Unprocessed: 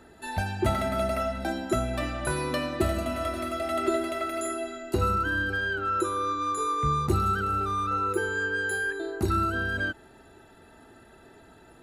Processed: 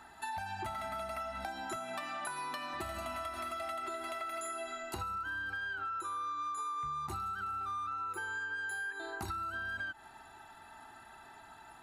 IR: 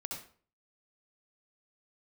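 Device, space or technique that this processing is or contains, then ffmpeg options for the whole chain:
serial compression, peaks first: -filter_complex "[0:a]lowshelf=f=650:t=q:w=3:g=-9,asettb=1/sr,asplit=3[s0][s1][s2];[s0]atrim=end=1.764[s3];[s1]atrim=start=1.76:end=2.74,asetpts=PTS-STARTPTS,afade=t=in:d=0.004:c=qsin,afade=t=out:st=0.976:d=0.004:c=qsin,highpass=f=170:w=0.5412,highpass=f=170:w=1.3066[s4];[s2]atrim=start=2.736[s5];[s3][s4]acrossfade=d=0.004:c1=hsin:c2=qsin[s6];[s6][s5]acrossfade=d=0.004:c1=qsin:c2=hsin,acompressor=threshold=0.0224:ratio=6,acompressor=threshold=0.0126:ratio=2.5"

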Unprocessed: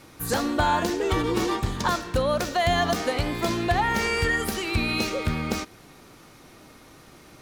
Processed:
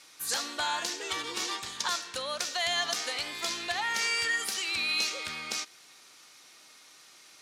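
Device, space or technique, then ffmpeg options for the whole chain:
piezo pickup straight into a mixer: -af "lowpass=6300,aderivative,volume=2.37"

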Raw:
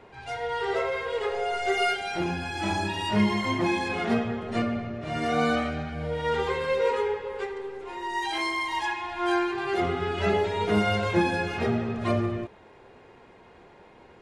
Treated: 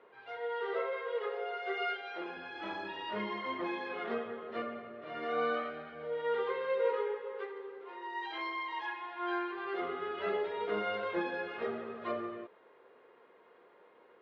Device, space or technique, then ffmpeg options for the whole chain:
phone earpiece: -filter_complex "[0:a]highpass=380,equalizer=f=480:t=q:w=4:g=6,equalizer=f=790:t=q:w=4:g=-6,equalizer=f=1200:t=q:w=4:g=5,equalizer=f=2500:t=q:w=4:g=-5,lowpass=f=3400:w=0.5412,lowpass=f=3400:w=1.3066,asettb=1/sr,asplit=3[s0][s1][s2];[s0]atrim=end=0.934[s3];[s1]atrim=start=0.93:end=2.37,asetpts=PTS-STARTPTS,afade=t=in:d=0.004:c=qsin,afade=t=out:st=1.436:d=0.004:c=qsin,highpass=290[s4];[s2]atrim=start=2.366[s5];[s3][s4]acrossfade=d=0.004:c1=hsin:c2=qsin[s6];[s6][s5]acrossfade=d=0.004:c1=qsin:c2=hsin,volume=0.376"

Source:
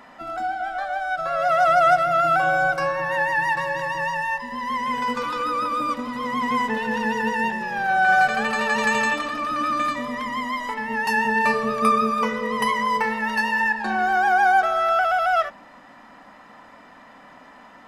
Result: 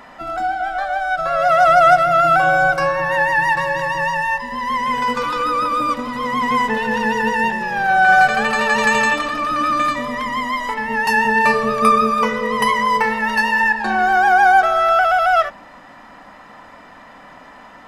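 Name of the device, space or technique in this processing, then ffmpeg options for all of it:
low shelf boost with a cut just above: -af "lowshelf=f=89:g=6.5,equalizer=f=240:t=o:w=0.51:g=-3.5,volume=1.88"

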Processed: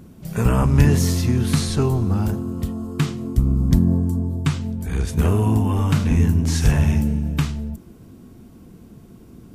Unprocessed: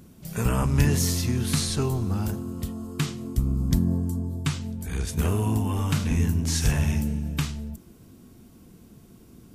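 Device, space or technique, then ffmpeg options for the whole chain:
behind a face mask: -af "highshelf=f=2400:g=-8,volume=2.11"

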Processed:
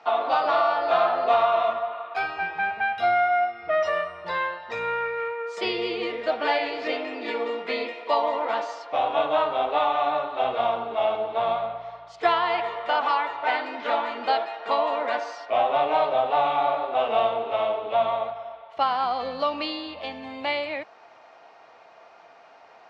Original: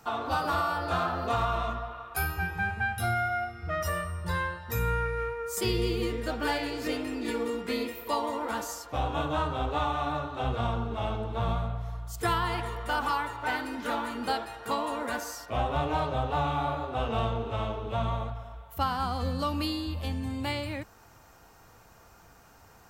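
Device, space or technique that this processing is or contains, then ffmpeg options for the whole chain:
phone earpiece: -af "highpass=470,equalizer=f=660:t=q:w=4:g=9,equalizer=f=1500:t=q:w=4:g=-4,equalizer=f=2200:t=q:w=4:g=4,lowpass=f=4100:w=0.5412,lowpass=f=4100:w=1.3066,volume=1.88"

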